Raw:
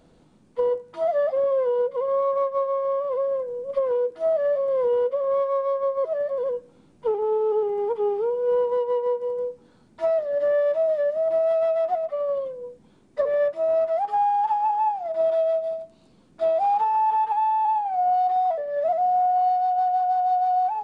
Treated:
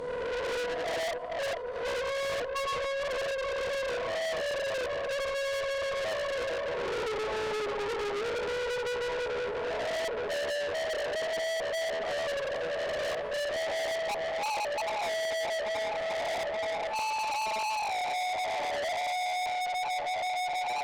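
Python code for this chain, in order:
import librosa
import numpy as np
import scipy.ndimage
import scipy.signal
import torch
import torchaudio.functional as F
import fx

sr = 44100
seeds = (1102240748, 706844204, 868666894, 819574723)

p1 = fx.spec_swells(x, sr, rise_s=1.58)
p2 = fx.echo_feedback(p1, sr, ms=89, feedback_pct=58, wet_db=-7.0)
p3 = fx.gate_flip(p2, sr, shuts_db=-12.0, range_db=-39)
p4 = fx.rider(p3, sr, range_db=10, speed_s=2.0)
p5 = p3 + (p4 * 10.0 ** (-1.5 / 20.0))
p6 = fx.transient(p5, sr, attack_db=8, sustain_db=-10)
p7 = p6 + fx.echo_alternate(p6, sr, ms=438, hz=1000.0, feedback_pct=88, wet_db=-11, dry=0)
p8 = fx.tube_stage(p7, sr, drive_db=30.0, bias=0.25)
p9 = fx.lowpass(p8, sr, hz=2900.0, slope=6)
p10 = fx.high_shelf(p9, sr, hz=2300.0, db=11.0)
y = p10 * 10.0 ** (-2.0 / 20.0)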